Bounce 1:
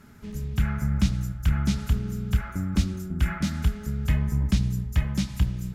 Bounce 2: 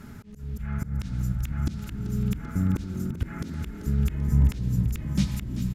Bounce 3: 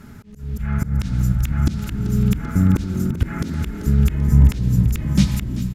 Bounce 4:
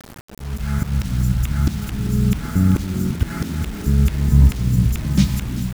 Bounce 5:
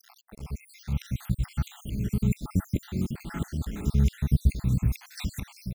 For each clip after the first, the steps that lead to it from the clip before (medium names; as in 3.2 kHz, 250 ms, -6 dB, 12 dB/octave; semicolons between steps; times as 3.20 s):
bass shelf 310 Hz +5 dB; slow attack 472 ms; frequency-shifting echo 388 ms, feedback 58%, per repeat +40 Hz, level -12 dB; trim +4.5 dB
level rider gain up to 7 dB; trim +2 dB
word length cut 6-bit, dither none
random holes in the spectrogram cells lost 67%; trim -6 dB